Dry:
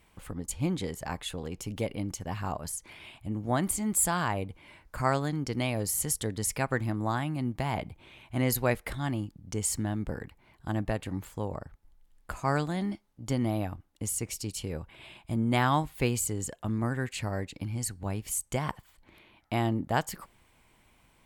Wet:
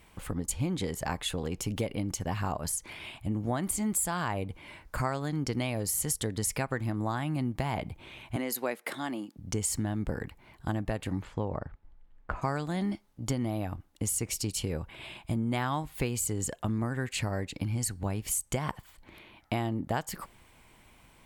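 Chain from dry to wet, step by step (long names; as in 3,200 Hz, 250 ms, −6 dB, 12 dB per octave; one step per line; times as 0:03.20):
0:11.21–0:12.41: low-pass filter 3,800 Hz → 1,800 Hz 12 dB per octave
downward compressor 6 to 1, threshold −32 dBFS, peak gain reduction 11.5 dB
0:08.36–0:09.37: high-pass filter 230 Hz 24 dB per octave
level +5 dB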